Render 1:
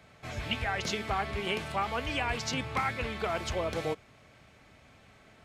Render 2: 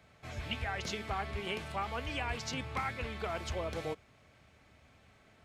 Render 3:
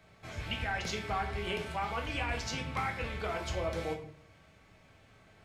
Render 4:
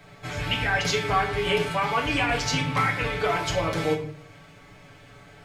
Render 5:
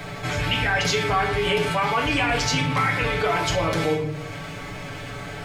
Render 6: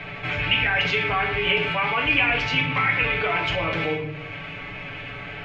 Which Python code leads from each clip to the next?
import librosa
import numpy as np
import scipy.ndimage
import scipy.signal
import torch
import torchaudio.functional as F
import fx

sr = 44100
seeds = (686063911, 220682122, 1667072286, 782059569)

y1 = fx.peak_eq(x, sr, hz=77.0, db=6.0, octaves=0.44)
y1 = y1 * librosa.db_to_amplitude(-5.5)
y2 = fx.room_shoebox(y1, sr, seeds[0], volume_m3=76.0, walls='mixed', distance_m=0.59)
y3 = y2 + 0.88 * np.pad(y2, (int(6.9 * sr / 1000.0), 0))[:len(y2)]
y3 = y3 * librosa.db_to_amplitude(9.0)
y4 = fx.env_flatten(y3, sr, amount_pct=50)
y5 = fx.lowpass_res(y4, sr, hz=2600.0, q=3.4)
y5 = y5 * librosa.db_to_amplitude(-4.0)